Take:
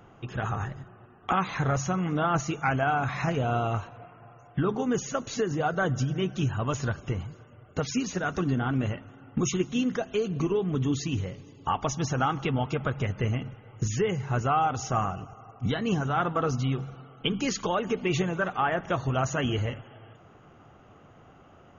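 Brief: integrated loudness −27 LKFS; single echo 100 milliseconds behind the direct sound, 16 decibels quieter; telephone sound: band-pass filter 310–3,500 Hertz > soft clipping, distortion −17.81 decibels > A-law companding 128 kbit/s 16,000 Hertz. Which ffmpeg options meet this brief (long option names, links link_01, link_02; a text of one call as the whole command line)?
ffmpeg -i in.wav -af "highpass=310,lowpass=3500,aecho=1:1:100:0.158,asoftclip=threshold=-19.5dB,volume=5.5dB" -ar 16000 -c:a pcm_alaw out.wav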